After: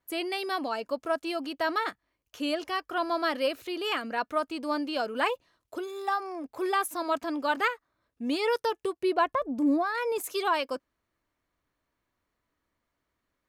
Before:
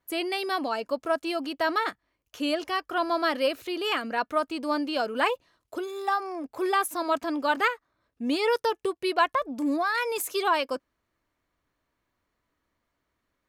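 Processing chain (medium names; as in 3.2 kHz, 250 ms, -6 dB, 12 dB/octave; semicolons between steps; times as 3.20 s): 9.03–10.24 s: tilt shelf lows +6 dB; trim -2.5 dB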